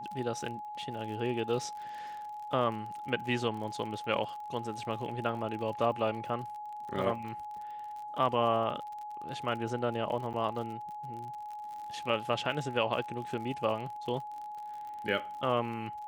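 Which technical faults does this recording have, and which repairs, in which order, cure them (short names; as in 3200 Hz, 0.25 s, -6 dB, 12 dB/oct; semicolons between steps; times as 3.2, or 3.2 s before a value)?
crackle 44/s -40 dBFS
tone 840 Hz -39 dBFS
10.33–10.34 gap 8.6 ms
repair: de-click; notch 840 Hz, Q 30; interpolate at 10.33, 8.6 ms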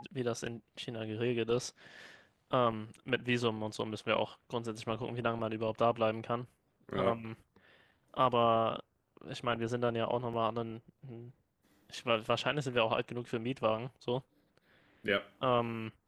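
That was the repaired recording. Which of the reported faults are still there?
none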